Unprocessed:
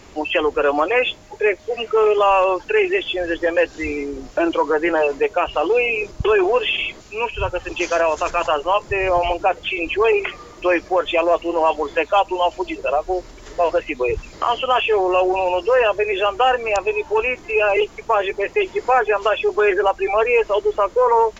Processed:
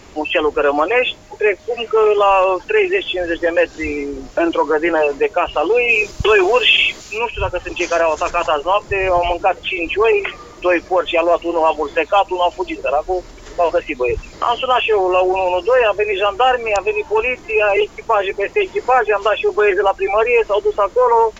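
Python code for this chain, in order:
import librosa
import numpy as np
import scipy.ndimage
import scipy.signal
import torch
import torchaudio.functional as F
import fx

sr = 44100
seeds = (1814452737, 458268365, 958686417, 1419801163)

y = fx.high_shelf(x, sr, hz=2100.0, db=11.0, at=(5.88, 7.17), fade=0.02)
y = y * 10.0 ** (2.5 / 20.0)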